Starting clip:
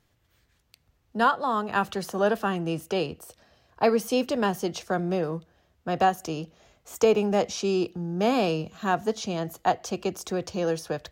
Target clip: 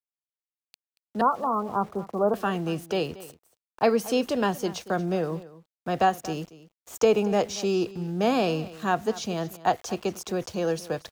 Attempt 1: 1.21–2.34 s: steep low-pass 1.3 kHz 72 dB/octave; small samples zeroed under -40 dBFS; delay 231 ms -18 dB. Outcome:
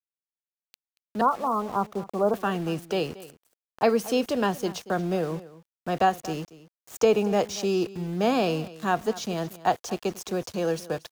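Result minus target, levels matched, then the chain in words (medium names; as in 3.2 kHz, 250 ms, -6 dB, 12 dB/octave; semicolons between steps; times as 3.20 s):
small samples zeroed: distortion +7 dB
1.21–2.34 s: steep low-pass 1.3 kHz 72 dB/octave; small samples zeroed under -46 dBFS; delay 231 ms -18 dB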